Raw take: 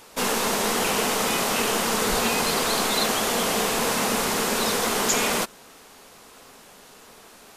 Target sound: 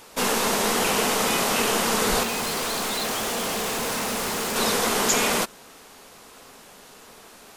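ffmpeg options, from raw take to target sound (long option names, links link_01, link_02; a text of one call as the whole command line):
ffmpeg -i in.wav -filter_complex "[0:a]asettb=1/sr,asplit=3[link_01][link_02][link_03];[link_01]atrim=end=2.234[link_04];[link_02]atrim=start=2.23:end=4.56,asetpts=PTS-STARTPTS,afade=type=in:duration=0.004:curve=qsin,afade=type=out:start_time=2.326:duration=0.004:curve=qsin,volume=26dB,asoftclip=hard,volume=-26dB[link_05];[link_03]atrim=start=4.556[link_06];[link_04][link_05]acrossfade=duration=0.004:curve1=hsin:curve2=qsin[link_07];[link_07][link_06]acrossfade=duration=0.004:curve1=qsin:curve2=hsin,volume=1dB" out.wav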